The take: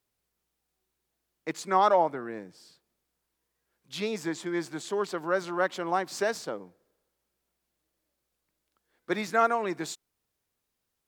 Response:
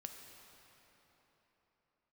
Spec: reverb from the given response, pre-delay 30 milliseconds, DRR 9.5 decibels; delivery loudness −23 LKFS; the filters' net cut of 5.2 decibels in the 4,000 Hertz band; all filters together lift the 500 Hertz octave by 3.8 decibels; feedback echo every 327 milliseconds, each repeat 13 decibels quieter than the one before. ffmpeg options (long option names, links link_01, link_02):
-filter_complex "[0:a]equalizer=frequency=500:width_type=o:gain=5,equalizer=frequency=4000:width_type=o:gain=-6.5,aecho=1:1:327|654|981:0.224|0.0493|0.0108,asplit=2[link_01][link_02];[1:a]atrim=start_sample=2205,adelay=30[link_03];[link_02][link_03]afir=irnorm=-1:irlink=0,volume=-5.5dB[link_04];[link_01][link_04]amix=inputs=2:normalize=0,volume=4dB"